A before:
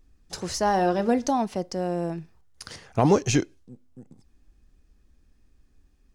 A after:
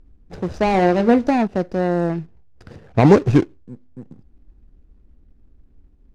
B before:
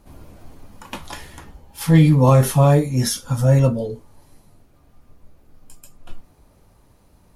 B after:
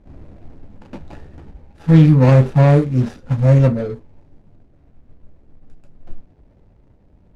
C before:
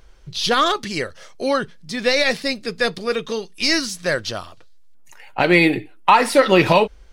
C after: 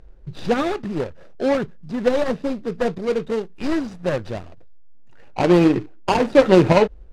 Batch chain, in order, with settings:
median filter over 41 samples; air absorption 60 m; normalise peaks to -1.5 dBFS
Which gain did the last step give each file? +9.0, +3.5, +3.5 dB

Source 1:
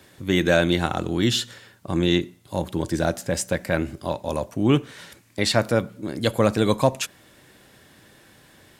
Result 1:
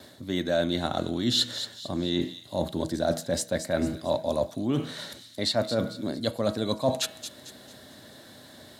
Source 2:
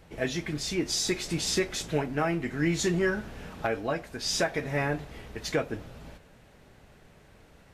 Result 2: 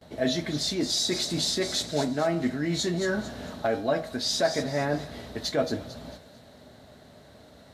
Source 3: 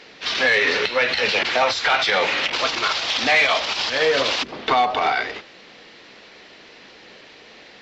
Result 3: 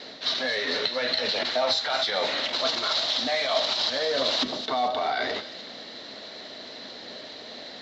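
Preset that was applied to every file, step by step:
de-hum 160.1 Hz, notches 20; reverse; compressor 6:1, threshold -28 dBFS; reverse; HPF 63 Hz 24 dB/oct; gate with hold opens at -50 dBFS; thirty-one-band EQ 250 Hz +8 dB, 630 Hz +10 dB, 2500 Hz -8 dB, 4000 Hz +11 dB; on a send: thin delay 0.224 s, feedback 40%, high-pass 3500 Hz, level -7.5 dB; on the sum: normalise peaks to -12 dBFS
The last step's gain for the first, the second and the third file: +1.0, +2.5, +1.0 dB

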